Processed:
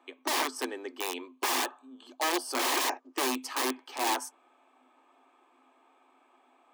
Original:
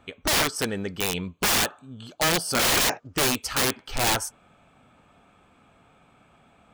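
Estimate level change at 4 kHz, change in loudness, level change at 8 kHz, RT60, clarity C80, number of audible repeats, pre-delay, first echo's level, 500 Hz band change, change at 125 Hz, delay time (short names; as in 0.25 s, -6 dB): -8.5 dB, -7.0 dB, -9.0 dB, none, none, none, none, none, -6.5 dB, under -40 dB, none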